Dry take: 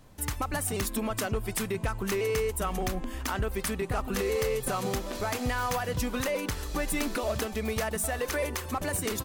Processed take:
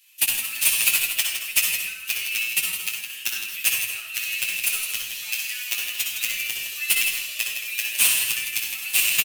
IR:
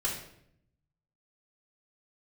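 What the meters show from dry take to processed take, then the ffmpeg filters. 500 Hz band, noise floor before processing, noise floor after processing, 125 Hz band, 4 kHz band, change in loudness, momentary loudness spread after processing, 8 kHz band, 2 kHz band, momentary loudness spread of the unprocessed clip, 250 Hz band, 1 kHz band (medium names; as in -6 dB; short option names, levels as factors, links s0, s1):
-22.5 dB, -39 dBFS, -37 dBFS, under -20 dB, +14.5 dB, +8.5 dB, 9 LU, +12.0 dB, +10.5 dB, 4 LU, under -20 dB, -11.5 dB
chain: -filter_complex "[0:a]equalizer=f=13000:w=3.2:g=6,crystalizer=i=6.5:c=0,aeval=exprs='1.41*(cos(1*acos(clip(val(0)/1.41,-1,1)))-cos(1*PI/2))+0.282*(cos(7*acos(clip(val(0)/1.41,-1,1)))-cos(7*PI/2))':c=same,highpass=f=2600:t=q:w=7,asoftclip=type=tanh:threshold=0.562,asplit=2[s0][s1];[s1]adelay=17,volume=0.398[s2];[s0][s2]amix=inputs=2:normalize=0,aecho=1:1:162:0.398,asplit=2[s3][s4];[1:a]atrim=start_sample=2205,adelay=59[s5];[s4][s5]afir=irnorm=-1:irlink=0,volume=0.447[s6];[s3][s6]amix=inputs=2:normalize=0,asplit=2[s7][s8];[s8]adelay=8.2,afreqshift=1.1[s9];[s7][s9]amix=inputs=2:normalize=1"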